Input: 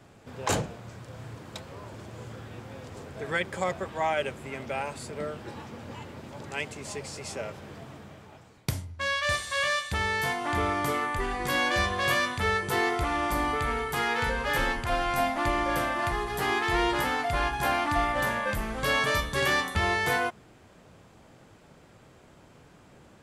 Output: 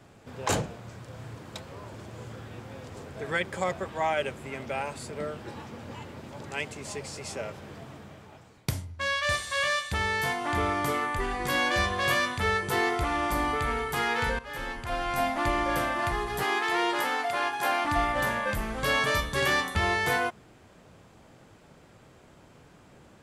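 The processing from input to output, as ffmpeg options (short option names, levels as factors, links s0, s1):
-filter_complex "[0:a]asettb=1/sr,asplit=3[s0][s1][s2];[s0]atrim=end=16.434[s3];[s1]atrim=start=16.43:end=17.85,asetpts=PTS-STARTPTS,afade=t=in:d=0.004:c=qsin,afade=t=out:st=1.416:d=0.004:c=qsin,highpass=330[s4];[s2]atrim=start=17.846[s5];[s3][s4]acrossfade=d=0.004:c1=hsin:c2=qsin[s6];[s6][s5]acrossfade=d=0.004:c1=qsin:c2=hsin,asplit=2[s7][s8];[s7]atrim=end=14.39,asetpts=PTS-STARTPTS,afade=t=out:st=14.386:d=0.004:c=hsin:silence=0.16788[s9];[s8]atrim=start=14.39,asetpts=PTS-STARTPTS,afade=t=in:d=0.95:silence=0.16788[s10];[s9][s10]concat=n=2:v=0:a=1"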